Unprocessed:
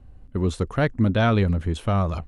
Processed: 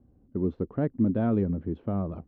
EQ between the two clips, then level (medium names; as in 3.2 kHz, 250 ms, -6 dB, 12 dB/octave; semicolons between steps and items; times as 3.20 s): band-pass filter 280 Hz, Q 1.3; distance through air 230 m; 0.0 dB